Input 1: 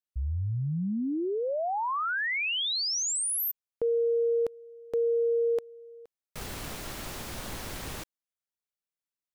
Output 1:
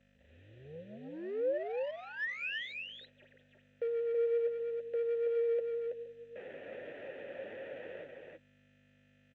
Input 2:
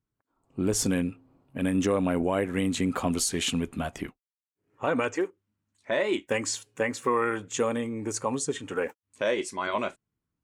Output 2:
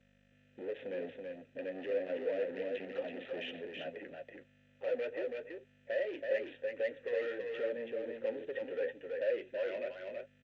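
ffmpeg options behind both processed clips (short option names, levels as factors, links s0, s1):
-filter_complex "[0:a]highpass=140,anlmdn=0.00398,asplit=2[s0][s1];[s1]acompressor=threshold=0.0141:ratio=10:attack=18:release=44:knee=1:detection=rms,volume=0.841[s2];[s0][s2]amix=inputs=2:normalize=0,flanger=delay=6.2:depth=6.7:regen=32:speed=1.3:shape=triangular,aeval=exprs='val(0)+0.00562*(sin(2*PI*50*n/s)+sin(2*PI*2*50*n/s)/2+sin(2*PI*3*50*n/s)/3+sin(2*PI*4*50*n/s)/4+sin(2*PI*5*50*n/s)/5)':c=same,adynamicsmooth=sensitivity=5:basefreq=1100,aresample=8000,acrusher=bits=5:mode=log:mix=0:aa=0.000001,aresample=44100,asoftclip=type=tanh:threshold=0.0266,asplit=3[s3][s4][s5];[s3]bandpass=f=530:t=q:w=8,volume=1[s6];[s4]bandpass=f=1840:t=q:w=8,volume=0.501[s7];[s5]bandpass=f=2480:t=q:w=8,volume=0.355[s8];[s6][s7][s8]amix=inputs=3:normalize=0,aecho=1:1:328:0.631,volume=2.24" -ar 16000 -c:a sbc -b:a 192k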